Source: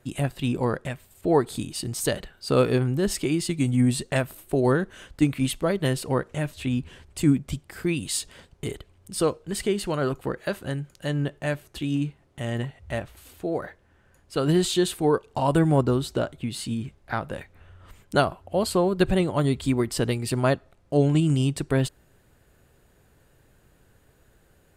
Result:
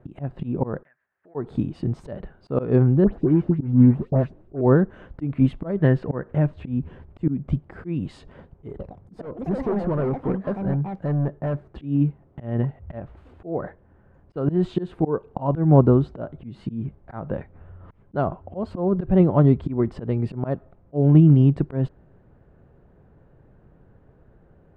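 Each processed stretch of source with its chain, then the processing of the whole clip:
0:00.83–0:01.35: resonant band-pass 1,700 Hz, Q 7.1 + downward compressor 3 to 1, threshold −57 dBFS
0:03.04–0:04.61: running median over 41 samples + all-pass dispersion highs, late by 103 ms, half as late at 2,400 Hz
0:05.78–0:06.37: low-pass filter 7,100 Hz + parametric band 1,700 Hz +9 dB 0.33 octaves
0:08.68–0:11.67: parametric band 2,800 Hz −7.5 dB 0.57 octaves + hard clipping −27 dBFS + delay with pitch and tempo change per echo 113 ms, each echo +5 semitones, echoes 2, each echo −6 dB
whole clip: volume swells 202 ms; low-pass filter 1,000 Hz 12 dB per octave; parametric band 170 Hz +4 dB 0.87 octaves; level +5.5 dB

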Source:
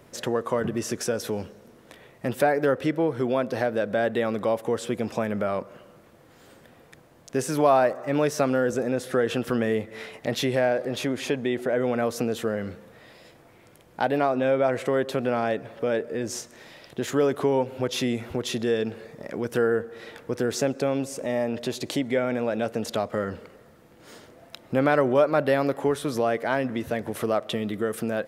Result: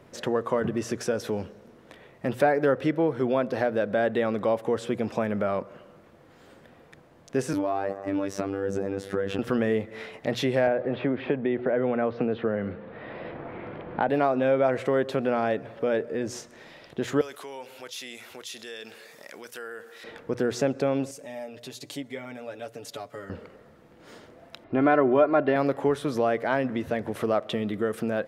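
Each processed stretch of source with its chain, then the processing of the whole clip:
0:07.53–0:09.39: parametric band 190 Hz +7 dB 1.8 octaves + downward compressor 10 to 1, threshold −20 dBFS + phases set to zero 98 Hz
0:10.67–0:14.09: Bessel low-pass filter 2,200 Hz, order 8 + multiband upward and downward compressor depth 70%
0:17.21–0:20.04: first difference + envelope flattener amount 50%
0:21.11–0:23.30: first-order pre-emphasis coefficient 0.8 + comb filter 7 ms, depth 77%
0:24.64–0:25.56: high-frequency loss of the air 270 metres + comb filter 2.9 ms
whole clip: high-shelf EQ 6,000 Hz −11 dB; mains-hum notches 60/120 Hz

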